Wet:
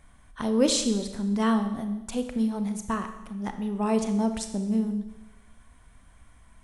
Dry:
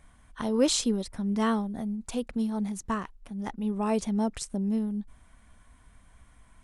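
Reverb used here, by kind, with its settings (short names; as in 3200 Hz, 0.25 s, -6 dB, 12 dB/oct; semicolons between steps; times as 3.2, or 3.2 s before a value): Schroeder reverb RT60 1 s, combs from 28 ms, DRR 7.5 dB; gain +1 dB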